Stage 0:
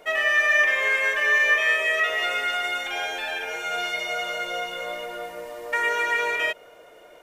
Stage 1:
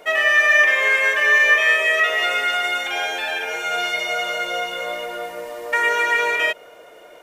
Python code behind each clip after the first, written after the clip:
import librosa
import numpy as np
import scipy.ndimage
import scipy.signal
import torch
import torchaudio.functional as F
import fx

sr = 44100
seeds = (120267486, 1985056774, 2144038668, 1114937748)

y = fx.low_shelf(x, sr, hz=110.0, db=-7.5)
y = y * 10.0 ** (5.0 / 20.0)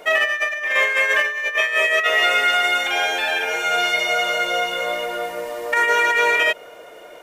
y = fx.over_compress(x, sr, threshold_db=-19.0, ratio=-0.5)
y = y * 10.0 ** (1.5 / 20.0)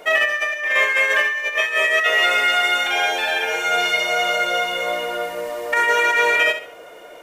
y = fx.echo_feedback(x, sr, ms=67, feedback_pct=30, wet_db=-10.0)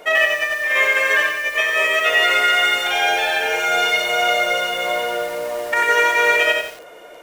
y = fx.echo_crushed(x, sr, ms=92, feedback_pct=35, bits=6, wet_db=-3.5)